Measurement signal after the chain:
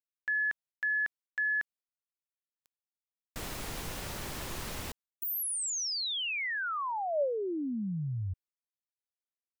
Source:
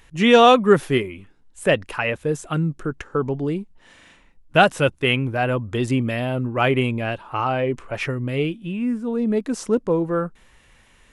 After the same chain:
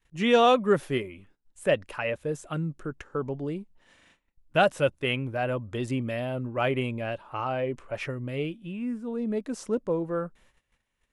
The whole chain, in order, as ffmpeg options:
ffmpeg -i in.wav -af "agate=range=-17dB:threshold=-50dB:ratio=16:detection=peak,adynamicequalizer=threshold=0.0126:dfrequency=580:dqfactor=5.5:tfrequency=580:tqfactor=5.5:attack=5:release=100:ratio=0.375:range=3.5:mode=boostabove:tftype=bell,volume=-8.5dB" out.wav

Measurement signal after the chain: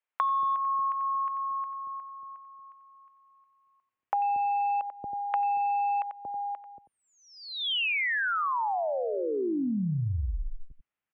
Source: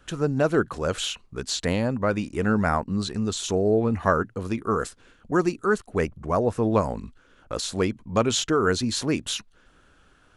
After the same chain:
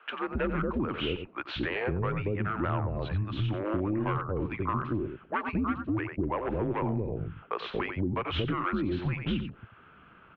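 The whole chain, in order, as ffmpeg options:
ffmpeg -i in.wav -filter_complex "[0:a]asplit=2[link_01][link_02];[link_02]aecho=0:1:91:0.282[link_03];[link_01][link_03]amix=inputs=2:normalize=0,volume=16.5dB,asoftclip=hard,volume=-16.5dB,acrossover=split=580[link_04][link_05];[link_04]adelay=230[link_06];[link_06][link_05]amix=inputs=2:normalize=0,highpass=frequency=160:width_type=q:width=0.5412,highpass=frequency=160:width_type=q:width=1.307,lowpass=frequency=2900:width_type=q:width=0.5176,lowpass=frequency=2900:width_type=q:width=0.7071,lowpass=frequency=2900:width_type=q:width=1.932,afreqshift=-100,acompressor=threshold=-33dB:ratio=5,volume=5.5dB" out.wav

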